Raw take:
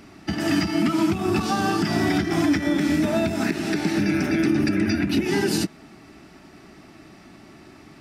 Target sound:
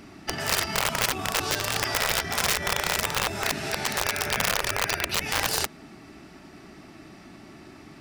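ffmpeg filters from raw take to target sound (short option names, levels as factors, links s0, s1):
-af "aeval=exprs='(mod(5.01*val(0)+1,2)-1)/5.01':c=same,afftfilt=real='re*lt(hypot(re,im),0.224)':imag='im*lt(hypot(re,im),0.224)':win_size=1024:overlap=0.75"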